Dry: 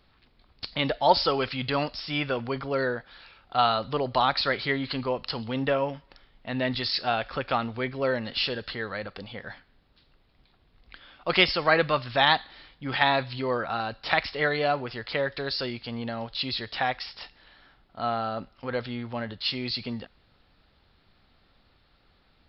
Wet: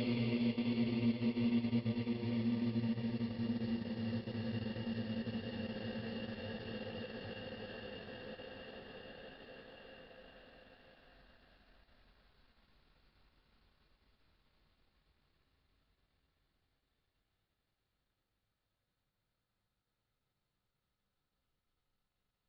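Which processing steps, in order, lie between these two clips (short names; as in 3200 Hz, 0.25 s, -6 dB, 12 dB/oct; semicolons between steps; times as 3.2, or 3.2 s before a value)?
expander -48 dBFS; Paulstretch 47×, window 0.25 s, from 19.9; transient shaper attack -3 dB, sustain -8 dB; gain -2.5 dB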